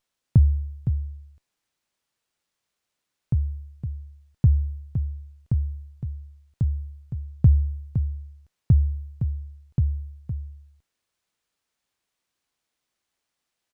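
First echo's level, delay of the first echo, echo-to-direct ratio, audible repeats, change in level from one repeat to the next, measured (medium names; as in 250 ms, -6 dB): -8.5 dB, 513 ms, -8.5 dB, 1, no regular repeats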